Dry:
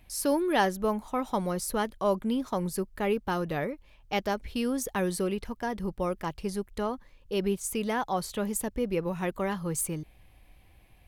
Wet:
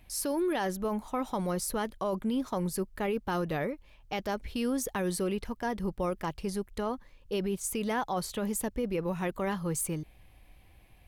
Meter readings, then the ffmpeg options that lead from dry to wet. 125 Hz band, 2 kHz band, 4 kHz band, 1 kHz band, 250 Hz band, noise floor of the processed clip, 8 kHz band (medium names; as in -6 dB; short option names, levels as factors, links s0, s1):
-1.0 dB, -3.0 dB, -2.5 dB, -3.5 dB, -1.5 dB, -58 dBFS, -1.0 dB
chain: -af "alimiter=limit=0.0708:level=0:latency=1:release=11"